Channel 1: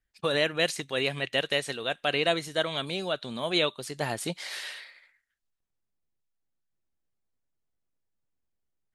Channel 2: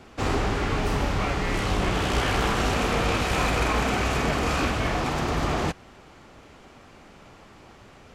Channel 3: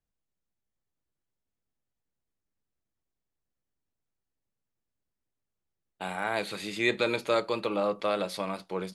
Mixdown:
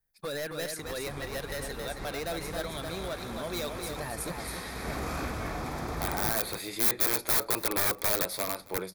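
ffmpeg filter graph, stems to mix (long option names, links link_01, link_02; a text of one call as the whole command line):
ffmpeg -i stem1.wav -i stem2.wav -i stem3.wav -filter_complex "[0:a]asoftclip=type=hard:threshold=-25.5dB,volume=-5dB,asplit=3[link_01][link_02][link_03];[link_02]volume=-5.5dB[link_04];[1:a]adelay=600,volume=-9.5dB,asplit=2[link_05][link_06];[link_06]volume=-9dB[link_07];[2:a]equalizer=frequency=210:width=3.6:gain=-12.5,aeval=exprs='(mod(16.8*val(0)+1,2)-1)/16.8':channel_layout=same,volume=0.5dB,asplit=2[link_08][link_09];[link_09]volume=-23dB[link_10];[link_03]apad=whole_len=385538[link_11];[link_05][link_11]sidechaincompress=threshold=-52dB:ratio=8:attack=23:release=113[link_12];[link_04][link_07][link_10]amix=inputs=3:normalize=0,aecho=0:1:272:1[link_13];[link_01][link_12][link_08][link_13]amix=inputs=4:normalize=0,equalizer=frequency=2900:width_type=o:width=0.23:gain=-14.5,aexciter=amount=1.9:drive=9.2:freq=9900" out.wav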